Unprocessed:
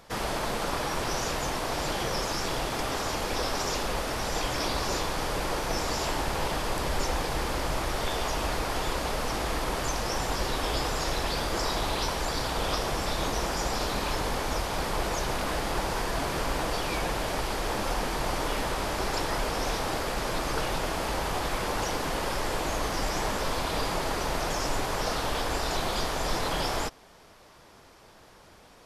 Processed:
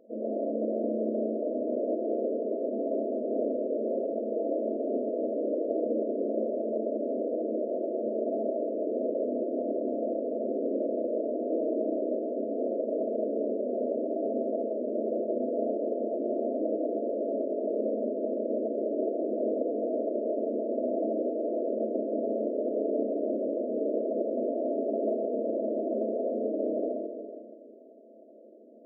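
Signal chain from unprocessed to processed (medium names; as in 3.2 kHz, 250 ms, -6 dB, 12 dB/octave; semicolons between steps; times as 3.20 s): Schroeder reverb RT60 2.2 s, combs from 28 ms, DRR -2.5 dB; FFT band-pass 210–680 Hz; trim +1 dB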